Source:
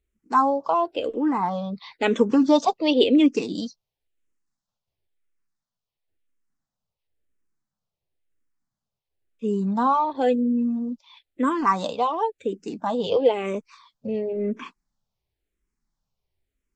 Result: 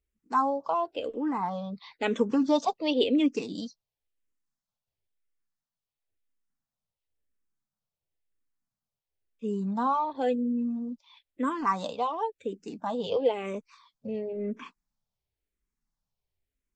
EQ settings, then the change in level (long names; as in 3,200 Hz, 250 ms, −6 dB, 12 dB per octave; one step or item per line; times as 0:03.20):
parametric band 350 Hz −4 dB 0.26 octaves
−6.0 dB